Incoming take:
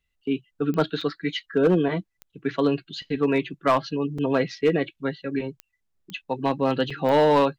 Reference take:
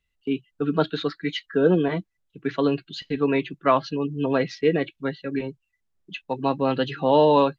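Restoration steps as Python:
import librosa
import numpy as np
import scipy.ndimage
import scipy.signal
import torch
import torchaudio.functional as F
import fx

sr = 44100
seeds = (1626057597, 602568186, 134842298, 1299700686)

y = fx.fix_declip(x, sr, threshold_db=-12.5)
y = fx.fix_declick_ar(y, sr, threshold=10.0)
y = fx.fix_interpolate(y, sr, at_s=(1.01, 2.32, 4.18, 6.9), length_ms=4.6)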